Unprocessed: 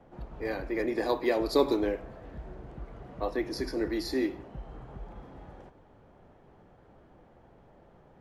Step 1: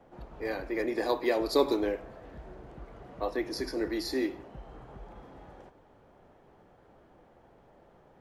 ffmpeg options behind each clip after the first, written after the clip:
-af "bass=f=250:g=-5,treble=f=4000:g=2"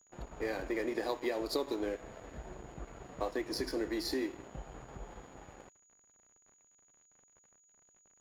-af "acompressor=threshold=0.02:ratio=5,aeval=exprs='sgn(val(0))*max(abs(val(0))-0.00237,0)':c=same,aeval=exprs='val(0)+0.000398*sin(2*PI*6800*n/s)':c=same,volume=1.41"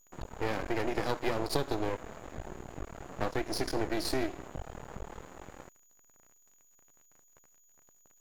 -af "aeval=exprs='max(val(0),0)':c=same,volume=2.24"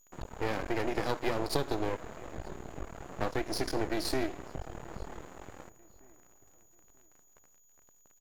-filter_complex "[0:a]asplit=2[s0][s1];[s1]adelay=938,lowpass=f=2400:p=1,volume=0.0891,asplit=2[s2][s3];[s3]adelay=938,lowpass=f=2400:p=1,volume=0.35,asplit=2[s4][s5];[s5]adelay=938,lowpass=f=2400:p=1,volume=0.35[s6];[s0][s2][s4][s6]amix=inputs=4:normalize=0"

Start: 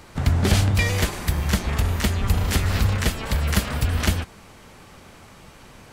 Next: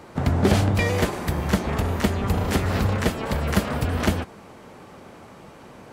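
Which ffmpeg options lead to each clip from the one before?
-af "highpass=f=370:p=1,tiltshelf=f=1200:g=8,volume=1.26"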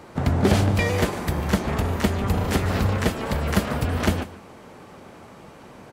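-af "aecho=1:1:146:0.15"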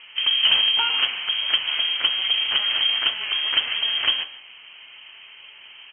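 -af "lowpass=f=2800:t=q:w=0.5098,lowpass=f=2800:t=q:w=0.6013,lowpass=f=2800:t=q:w=0.9,lowpass=f=2800:t=q:w=2.563,afreqshift=-3300,bandreject=f=53.34:t=h:w=4,bandreject=f=106.68:t=h:w=4,bandreject=f=160.02:t=h:w=4,bandreject=f=213.36:t=h:w=4,bandreject=f=266.7:t=h:w=4,bandreject=f=320.04:t=h:w=4,bandreject=f=373.38:t=h:w=4,bandreject=f=426.72:t=h:w=4,bandreject=f=480.06:t=h:w=4,bandreject=f=533.4:t=h:w=4,bandreject=f=586.74:t=h:w=4,bandreject=f=640.08:t=h:w=4,bandreject=f=693.42:t=h:w=4,bandreject=f=746.76:t=h:w=4,bandreject=f=800.1:t=h:w=4,bandreject=f=853.44:t=h:w=4,bandreject=f=906.78:t=h:w=4,bandreject=f=960.12:t=h:w=4,bandreject=f=1013.46:t=h:w=4,bandreject=f=1066.8:t=h:w=4,bandreject=f=1120.14:t=h:w=4,bandreject=f=1173.48:t=h:w=4,bandreject=f=1226.82:t=h:w=4,bandreject=f=1280.16:t=h:w=4,bandreject=f=1333.5:t=h:w=4,bandreject=f=1386.84:t=h:w=4,bandreject=f=1440.18:t=h:w=4,bandreject=f=1493.52:t=h:w=4,bandreject=f=1546.86:t=h:w=4,bandreject=f=1600.2:t=h:w=4,bandreject=f=1653.54:t=h:w=4,bandreject=f=1706.88:t=h:w=4,bandreject=f=1760.22:t=h:w=4,bandreject=f=1813.56:t=h:w=4,bandreject=f=1866.9:t=h:w=4,bandreject=f=1920.24:t=h:w=4,bandreject=f=1973.58:t=h:w=4,bandreject=f=2026.92:t=h:w=4"

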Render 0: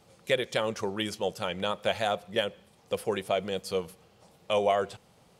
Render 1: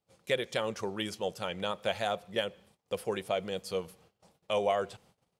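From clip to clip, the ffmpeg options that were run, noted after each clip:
-af "agate=range=0.0794:threshold=0.00141:ratio=16:detection=peak,volume=0.668"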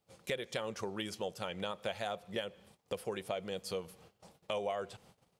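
-af "acompressor=threshold=0.00631:ratio=2.5,volume=1.68"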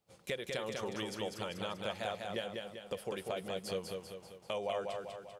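-af "aecho=1:1:196|392|588|784|980|1176|1372:0.631|0.322|0.164|0.0837|0.0427|0.0218|0.0111,volume=0.841"

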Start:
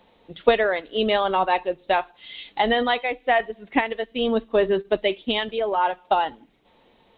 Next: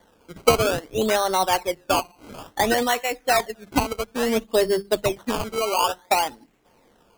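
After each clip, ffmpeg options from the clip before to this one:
-af "bandreject=f=50:t=h:w=6,bandreject=f=100:t=h:w=6,bandreject=f=150:t=h:w=6,bandreject=f=200:t=h:w=6,acrusher=samples=17:mix=1:aa=0.000001:lfo=1:lforange=17:lforate=0.58"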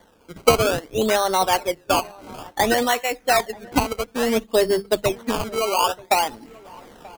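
-filter_complex "[0:a]areverse,acompressor=mode=upward:threshold=0.0158:ratio=2.5,areverse,asplit=2[s0][s1];[s1]adelay=932.9,volume=0.0794,highshelf=f=4000:g=-21[s2];[s0][s2]amix=inputs=2:normalize=0,volume=1.19"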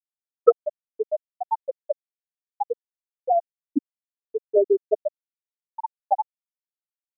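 -af "bandreject=f=50:t=h:w=6,bandreject=f=100:t=h:w=6,bandreject=f=150:t=h:w=6,bandreject=f=200:t=h:w=6,bandreject=f=250:t=h:w=6,afftfilt=real='re*gte(hypot(re,im),1.26)':imag='im*gte(hypot(re,im),1.26)':win_size=1024:overlap=0.75,volume=1.33"

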